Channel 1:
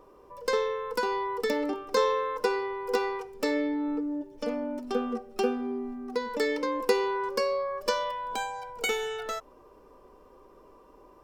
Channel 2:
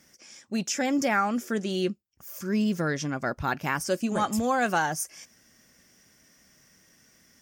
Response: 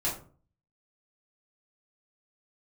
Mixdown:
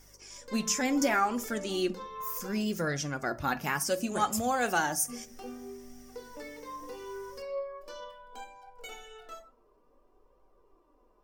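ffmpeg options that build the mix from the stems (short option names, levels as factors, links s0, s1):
-filter_complex "[0:a]alimiter=limit=0.0841:level=0:latency=1:release=18,volume=0.211,asplit=3[s0][s1][s2];[s0]atrim=end=2.54,asetpts=PTS-STARTPTS,afade=t=out:st=2.536:d=0.004:c=hsin[s3];[s1]atrim=start=2.54:end=5.08,asetpts=PTS-STARTPTS,volume=0[s4];[s2]atrim=start=5.08,asetpts=PTS-STARTPTS,afade=t=in:d=0.004:c=hsin[s5];[s3][s4][s5]concat=n=3:v=0:a=1,asplit=2[s6][s7];[s7]volume=0.562[s8];[1:a]highshelf=f=6300:g=9,bandreject=f=59.94:t=h:w=4,bandreject=f=119.88:t=h:w=4,bandreject=f=179.82:t=h:w=4,aeval=exprs='val(0)+0.00126*(sin(2*PI*50*n/s)+sin(2*PI*2*50*n/s)/2+sin(2*PI*3*50*n/s)/3+sin(2*PI*4*50*n/s)/4+sin(2*PI*5*50*n/s)/5)':c=same,volume=1,asplit=2[s9][s10];[s10]volume=0.133[s11];[2:a]atrim=start_sample=2205[s12];[s8][s11]amix=inputs=2:normalize=0[s13];[s13][s12]afir=irnorm=-1:irlink=0[s14];[s6][s9][s14]amix=inputs=3:normalize=0,flanger=delay=1.2:depth=3.7:regen=45:speed=0.67:shape=triangular"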